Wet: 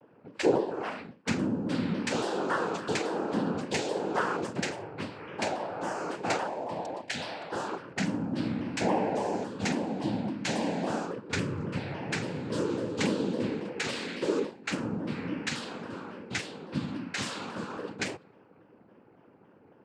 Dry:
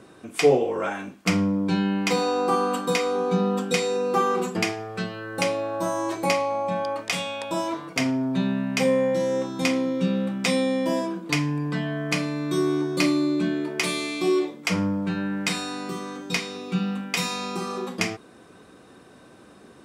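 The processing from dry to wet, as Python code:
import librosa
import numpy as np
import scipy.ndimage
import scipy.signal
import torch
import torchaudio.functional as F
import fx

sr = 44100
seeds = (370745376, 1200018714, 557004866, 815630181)

y = fx.env_lowpass(x, sr, base_hz=940.0, full_db=-20.0)
y = fx.spec_erase(y, sr, start_s=6.47, length_s=0.72, low_hz=740.0, high_hz=2100.0)
y = fx.noise_vocoder(y, sr, seeds[0], bands=8)
y = fx.vibrato_shape(y, sr, shape='saw_down', rate_hz=3.6, depth_cents=160.0)
y = y * librosa.db_to_amplitude(-6.5)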